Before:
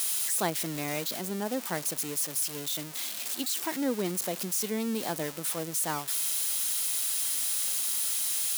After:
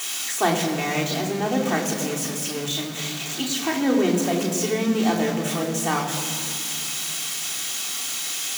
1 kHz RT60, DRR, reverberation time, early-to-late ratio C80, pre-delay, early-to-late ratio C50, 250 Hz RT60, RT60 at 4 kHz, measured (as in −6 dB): 2.3 s, −2.5 dB, 2.5 s, 7.5 dB, 3 ms, 6.5 dB, 3.6 s, 1.5 s